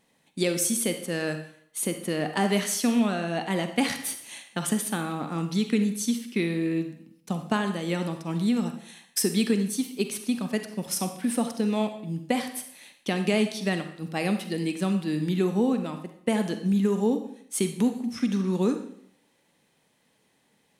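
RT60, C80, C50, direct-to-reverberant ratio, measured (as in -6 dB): 0.65 s, 12.0 dB, 8.5 dB, 7.0 dB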